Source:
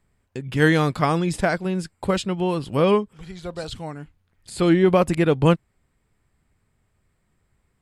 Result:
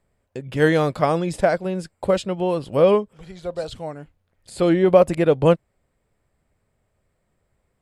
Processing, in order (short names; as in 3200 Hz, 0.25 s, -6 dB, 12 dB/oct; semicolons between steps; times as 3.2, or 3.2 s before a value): bell 570 Hz +10 dB 0.8 oct; gain -3 dB